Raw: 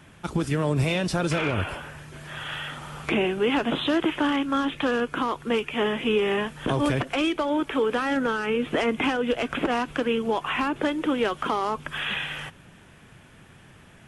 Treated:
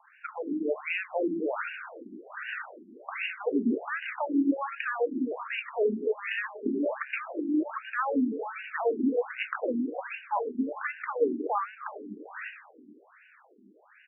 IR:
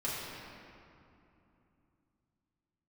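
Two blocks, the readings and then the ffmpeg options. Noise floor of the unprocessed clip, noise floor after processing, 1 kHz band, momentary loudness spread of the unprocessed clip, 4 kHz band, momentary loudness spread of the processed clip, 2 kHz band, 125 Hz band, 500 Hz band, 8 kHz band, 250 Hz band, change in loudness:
-51 dBFS, -59 dBFS, -6.0 dB, 9 LU, -16.0 dB, 13 LU, -5.0 dB, under -20 dB, -5.0 dB, under -35 dB, -4.5 dB, -5.5 dB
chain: -filter_complex "[0:a]aecho=1:1:155|310|465:0.2|0.0698|0.0244,asplit=2[a][b];[1:a]atrim=start_sample=2205,lowshelf=f=490:g=8[c];[b][c]afir=irnorm=-1:irlink=0,volume=-18.5dB[d];[a][d]amix=inputs=2:normalize=0,afftfilt=real='re*between(b*sr/1024,270*pow(2100/270,0.5+0.5*sin(2*PI*1.3*pts/sr))/1.41,270*pow(2100/270,0.5+0.5*sin(2*PI*1.3*pts/sr))*1.41)':imag='im*between(b*sr/1024,270*pow(2100/270,0.5+0.5*sin(2*PI*1.3*pts/sr))/1.41,270*pow(2100/270,0.5+0.5*sin(2*PI*1.3*pts/sr))*1.41)':win_size=1024:overlap=0.75"

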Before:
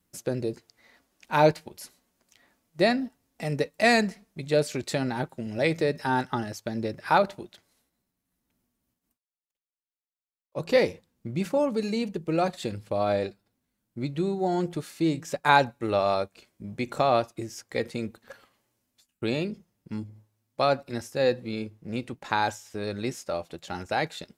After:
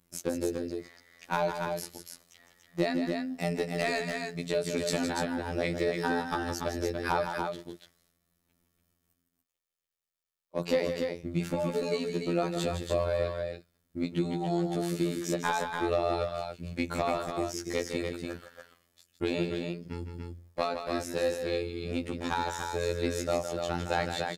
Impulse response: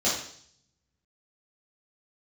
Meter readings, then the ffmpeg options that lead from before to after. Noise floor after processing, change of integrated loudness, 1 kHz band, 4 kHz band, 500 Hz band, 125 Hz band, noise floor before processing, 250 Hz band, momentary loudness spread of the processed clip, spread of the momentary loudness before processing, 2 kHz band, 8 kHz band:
-80 dBFS, -4.5 dB, -6.0 dB, -3.0 dB, -3.5 dB, -2.5 dB, under -85 dBFS, -2.5 dB, 9 LU, 16 LU, -5.0 dB, +1.5 dB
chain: -filter_complex "[0:a]acompressor=threshold=-28dB:ratio=10,volume=23dB,asoftclip=hard,volume=-23dB,afftfilt=real='hypot(re,im)*cos(PI*b)':imag='0':win_size=2048:overlap=0.75,asplit=2[a][b];[b]aecho=0:1:160.3|288.6:0.398|0.562[c];[a][c]amix=inputs=2:normalize=0,volume=5.5dB"

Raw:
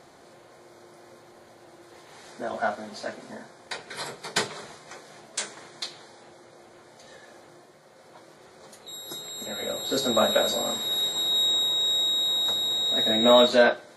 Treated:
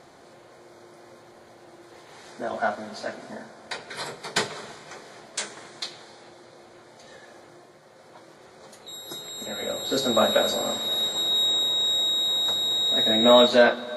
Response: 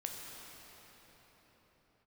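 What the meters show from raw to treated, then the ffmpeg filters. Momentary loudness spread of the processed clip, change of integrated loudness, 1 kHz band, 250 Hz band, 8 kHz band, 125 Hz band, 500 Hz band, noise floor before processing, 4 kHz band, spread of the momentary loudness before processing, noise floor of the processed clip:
19 LU, +1.5 dB, +1.5 dB, +2.0 dB, -0.5 dB, +1.5 dB, +1.5 dB, -53 dBFS, +1.0 dB, 18 LU, -51 dBFS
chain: -filter_complex "[0:a]highshelf=f=10k:g=-6,asplit=2[a][b];[1:a]atrim=start_sample=2205[c];[b][c]afir=irnorm=-1:irlink=0,volume=-11.5dB[d];[a][d]amix=inputs=2:normalize=0"

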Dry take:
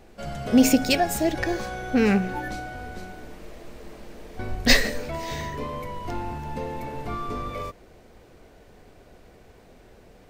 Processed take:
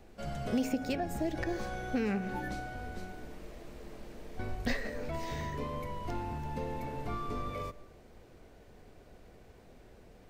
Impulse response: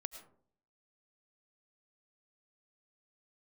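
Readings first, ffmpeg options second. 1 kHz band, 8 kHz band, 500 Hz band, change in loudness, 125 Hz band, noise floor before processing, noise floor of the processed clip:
-8.5 dB, -19.5 dB, -10.0 dB, -12.0 dB, -6.5 dB, -52 dBFS, -57 dBFS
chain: -filter_complex "[0:a]asplit=2[a][b];[1:a]atrim=start_sample=2205,lowshelf=f=470:g=11[c];[b][c]afir=irnorm=-1:irlink=0,volume=-11dB[d];[a][d]amix=inputs=2:normalize=0,acrossover=split=380|2200[e][f][g];[e]acompressor=threshold=-25dB:ratio=4[h];[f]acompressor=threshold=-28dB:ratio=4[i];[g]acompressor=threshold=-41dB:ratio=4[j];[h][i][j]amix=inputs=3:normalize=0,volume=-8dB"

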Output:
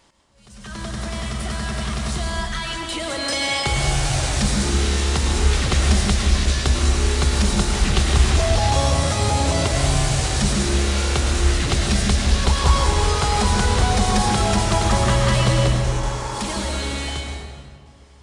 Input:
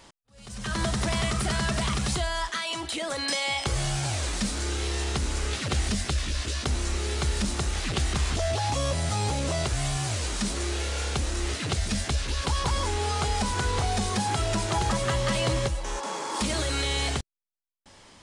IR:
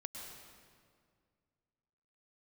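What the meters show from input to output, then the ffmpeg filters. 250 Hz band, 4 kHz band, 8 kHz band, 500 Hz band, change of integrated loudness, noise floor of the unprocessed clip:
+8.0 dB, +6.5 dB, +6.5 dB, +6.5 dB, +8.0 dB, -53 dBFS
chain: -filter_complex "[0:a]dynaudnorm=f=440:g=13:m=10.5dB[a];[1:a]atrim=start_sample=2205[b];[a][b]afir=irnorm=-1:irlink=0"

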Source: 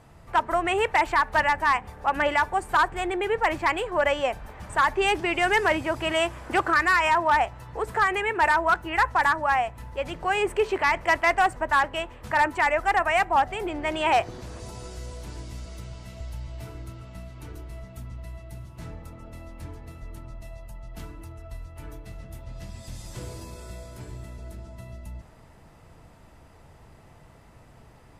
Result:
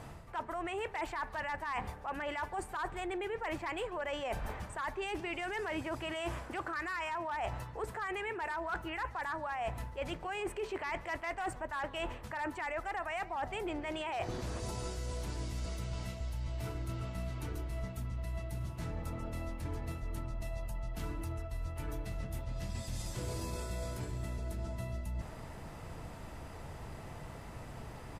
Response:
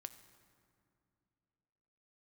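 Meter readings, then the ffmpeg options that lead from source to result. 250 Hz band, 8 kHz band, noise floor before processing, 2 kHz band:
-8.0 dB, -7.5 dB, -52 dBFS, -15.5 dB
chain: -filter_complex "[0:a]alimiter=limit=-20dB:level=0:latency=1:release=12,areverse,acompressor=threshold=-40dB:ratio=16,areverse,asplit=2[a][b];[b]adelay=140,highpass=300,lowpass=3.4k,asoftclip=type=hard:threshold=-39.5dB,volume=-19dB[c];[a][c]amix=inputs=2:normalize=0,volume=5.5dB"

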